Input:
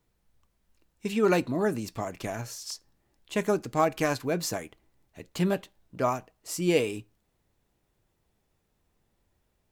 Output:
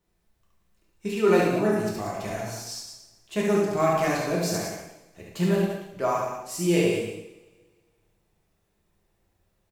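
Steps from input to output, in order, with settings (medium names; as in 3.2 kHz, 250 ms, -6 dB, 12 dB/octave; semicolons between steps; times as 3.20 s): loudspeakers at several distances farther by 24 m -3 dB, 63 m -8 dB; reverberation, pre-delay 3 ms, DRR -3 dB; trim -4 dB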